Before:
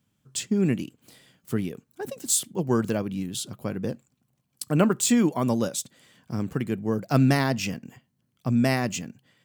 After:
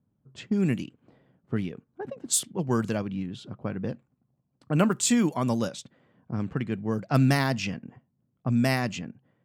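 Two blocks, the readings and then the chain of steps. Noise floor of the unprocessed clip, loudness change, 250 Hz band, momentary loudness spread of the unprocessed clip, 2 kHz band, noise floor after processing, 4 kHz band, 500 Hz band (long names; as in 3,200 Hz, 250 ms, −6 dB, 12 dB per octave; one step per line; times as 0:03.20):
−74 dBFS, −1.5 dB, −2.0 dB, 14 LU, −0.5 dB, −75 dBFS, −1.5 dB, −3.0 dB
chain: low-pass that shuts in the quiet parts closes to 770 Hz, open at −18.5 dBFS
dynamic equaliser 390 Hz, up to −4 dB, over −34 dBFS, Q 0.93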